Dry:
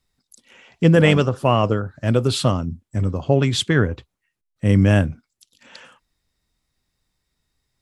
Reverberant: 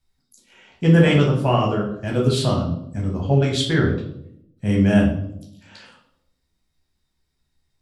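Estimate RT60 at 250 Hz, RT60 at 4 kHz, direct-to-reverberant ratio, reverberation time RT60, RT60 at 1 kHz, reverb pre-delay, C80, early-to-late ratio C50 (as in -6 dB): 1.1 s, 0.60 s, -2.0 dB, 0.80 s, 0.65 s, 8 ms, 9.5 dB, 6.0 dB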